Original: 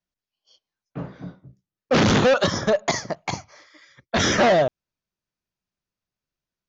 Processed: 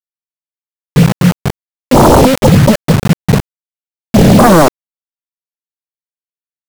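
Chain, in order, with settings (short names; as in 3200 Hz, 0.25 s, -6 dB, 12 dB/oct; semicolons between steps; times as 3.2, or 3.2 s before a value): low-pass sweep 170 Hz -> 4800 Hz, 4.23–6.31; requantised 6-bit, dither none; sine folder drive 14 dB, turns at -7.5 dBFS; gain +6 dB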